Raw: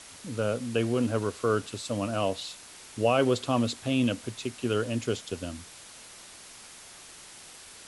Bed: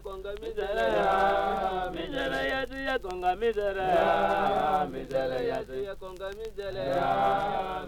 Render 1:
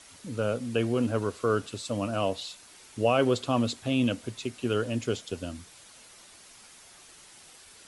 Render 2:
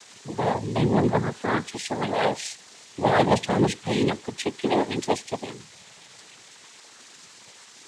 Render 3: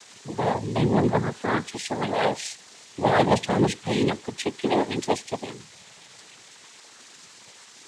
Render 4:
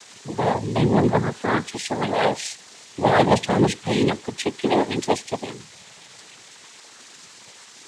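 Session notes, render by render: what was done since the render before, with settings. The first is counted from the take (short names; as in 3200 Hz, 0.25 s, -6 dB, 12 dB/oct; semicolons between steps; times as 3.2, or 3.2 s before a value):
denoiser 6 dB, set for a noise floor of -49 dBFS
moving spectral ripple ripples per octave 1.5, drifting +0.39 Hz, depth 22 dB; noise vocoder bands 6
nothing audible
gain +3 dB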